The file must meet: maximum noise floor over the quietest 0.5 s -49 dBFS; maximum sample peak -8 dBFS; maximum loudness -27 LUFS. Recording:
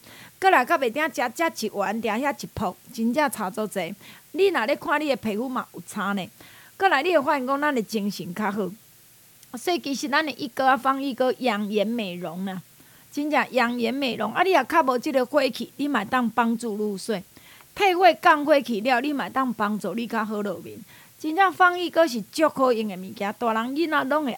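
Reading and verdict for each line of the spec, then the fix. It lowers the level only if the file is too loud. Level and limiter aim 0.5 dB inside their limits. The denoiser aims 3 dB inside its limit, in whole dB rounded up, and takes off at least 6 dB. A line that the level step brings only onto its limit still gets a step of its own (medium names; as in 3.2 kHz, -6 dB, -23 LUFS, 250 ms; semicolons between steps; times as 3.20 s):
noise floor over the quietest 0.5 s -53 dBFS: pass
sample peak -5.0 dBFS: fail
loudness -23.5 LUFS: fail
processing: trim -4 dB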